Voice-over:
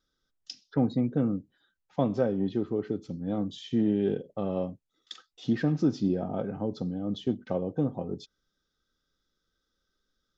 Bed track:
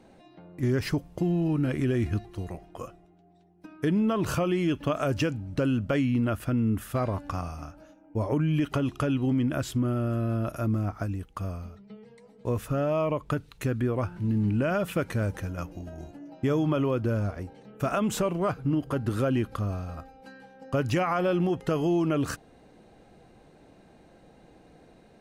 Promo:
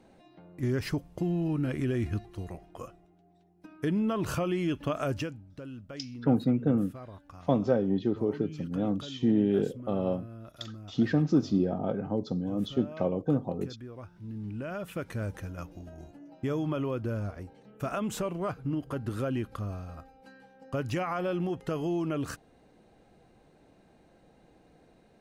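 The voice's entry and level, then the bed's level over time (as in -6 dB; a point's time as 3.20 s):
5.50 s, +1.0 dB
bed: 5.11 s -3.5 dB
5.52 s -17 dB
13.89 s -17 dB
15.28 s -5.5 dB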